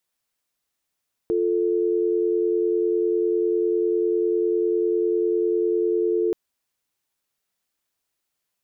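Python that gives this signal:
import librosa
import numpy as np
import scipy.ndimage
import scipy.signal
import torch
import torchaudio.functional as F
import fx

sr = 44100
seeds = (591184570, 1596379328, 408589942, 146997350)

y = fx.call_progress(sr, length_s=5.03, kind='dial tone', level_db=-21.5)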